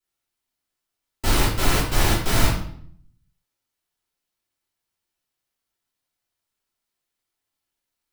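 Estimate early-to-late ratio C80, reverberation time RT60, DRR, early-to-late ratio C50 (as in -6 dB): 7.5 dB, 0.60 s, -9.5 dB, 3.5 dB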